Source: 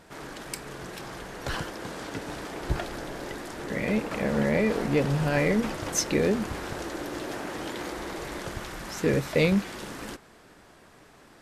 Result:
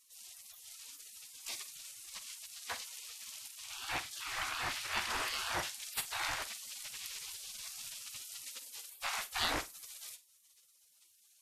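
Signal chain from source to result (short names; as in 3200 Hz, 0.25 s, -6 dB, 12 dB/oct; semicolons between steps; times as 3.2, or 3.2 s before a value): spectral gate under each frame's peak -25 dB weak; on a send: flutter echo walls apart 8.3 m, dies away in 0.21 s; on the sum: gain +4 dB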